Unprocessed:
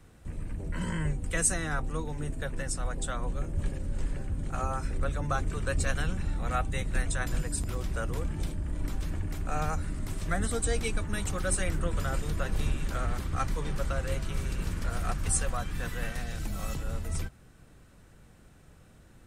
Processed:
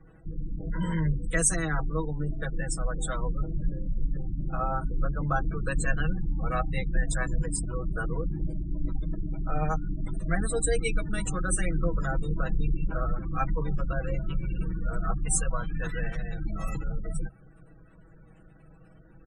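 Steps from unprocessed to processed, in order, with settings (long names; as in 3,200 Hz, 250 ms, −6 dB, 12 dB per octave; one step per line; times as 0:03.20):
gate on every frequency bin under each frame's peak −25 dB strong
comb filter 6.2 ms, depth 92%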